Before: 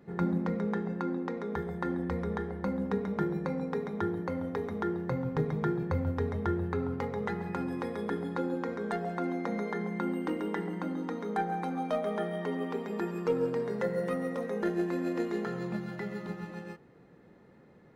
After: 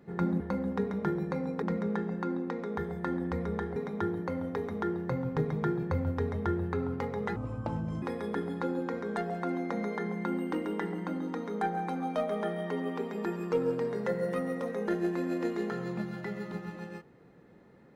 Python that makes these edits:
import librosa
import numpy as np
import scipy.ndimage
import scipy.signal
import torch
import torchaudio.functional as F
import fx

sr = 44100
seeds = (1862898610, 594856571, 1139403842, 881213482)

y = fx.edit(x, sr, fx.move(start_s=2.54, length_s=1.22, to_s=0.4),
    fx.speed_span(start_s=7.36, length_s=0.41, speed=0.62), tone=tone)